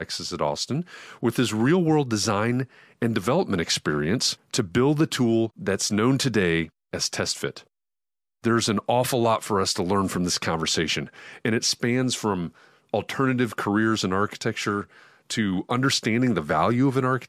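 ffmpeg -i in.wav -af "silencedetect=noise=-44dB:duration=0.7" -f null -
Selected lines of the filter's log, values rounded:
silence_start: 7.62
silence_end: 8.44 | silence_duration: 0.82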